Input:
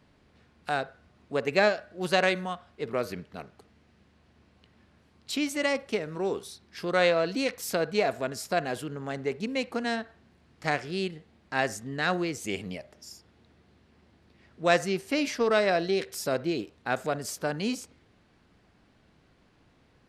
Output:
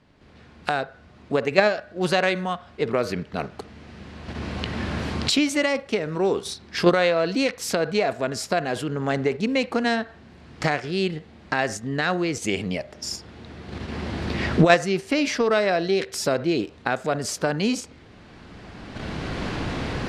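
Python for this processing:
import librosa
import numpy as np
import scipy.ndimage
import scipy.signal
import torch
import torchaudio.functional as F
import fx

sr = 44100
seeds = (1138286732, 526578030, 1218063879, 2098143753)

p1 = fx.recorder_agc(x, sr, target_db=-15.0, rise_db_per_s=15.0, max_gain_db=30)
p2 = scipy.signal.sosfilt(scipy.signal.bessel(2, 7000.0, 'lowpass', norm='mag', fs=sr, output='sos'), p1)
p3 = fx.level_steps(p2, sr, step_db=20)
p4 = p2 + (p3 * 10.0 ** (0.0 / 20.0))
y = p4 * 10.0 ** (1.5 / 20.0)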